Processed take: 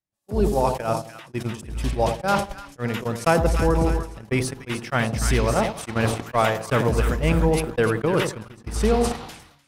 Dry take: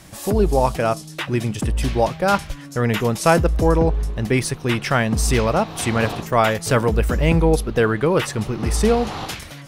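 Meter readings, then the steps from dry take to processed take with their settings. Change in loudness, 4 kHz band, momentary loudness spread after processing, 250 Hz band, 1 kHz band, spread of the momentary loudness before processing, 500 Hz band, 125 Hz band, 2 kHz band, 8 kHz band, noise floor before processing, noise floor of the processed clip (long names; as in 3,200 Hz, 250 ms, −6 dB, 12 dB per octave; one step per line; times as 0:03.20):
−3.5 dB, −4.5 dB, 11 LU, −4.0 dB, −3.0 dB, 7 LU, −3.5 dB, −4.0 dB, −3.5 dB, −5.0 dB, −38 dBFS, −53 dBFS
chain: echo with a time of its own for lows and highs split 980 Hz, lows 88 ms, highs 300 ms, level −7 dB
noise gate −17 dBFS, range −46 dB
level that may fall only so fast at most 72 dB per second
level −4 dB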